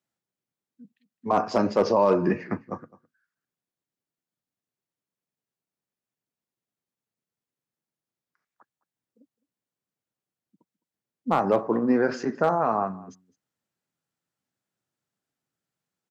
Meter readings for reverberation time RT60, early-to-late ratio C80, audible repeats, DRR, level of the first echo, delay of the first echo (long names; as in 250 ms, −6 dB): no reverb audible, no reverb audible, 1, no reverb audible, −21.5 dB, 210 ms